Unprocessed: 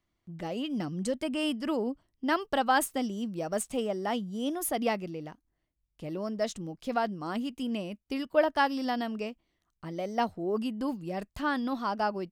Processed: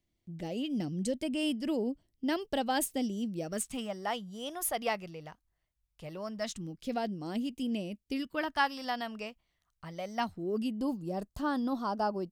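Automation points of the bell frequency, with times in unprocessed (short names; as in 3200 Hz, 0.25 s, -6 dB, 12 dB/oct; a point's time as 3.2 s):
bell -14 dB 1.1 oct
3.38 s 1200 Hz
4.03 s 280 Hz
6.21 s 280 Hz
6.98 s 1200 Hz
8.05 s 1200 Hz
8.76 s 310 Hz
10.04 s 310 Hz
10.97 s 2200 Hz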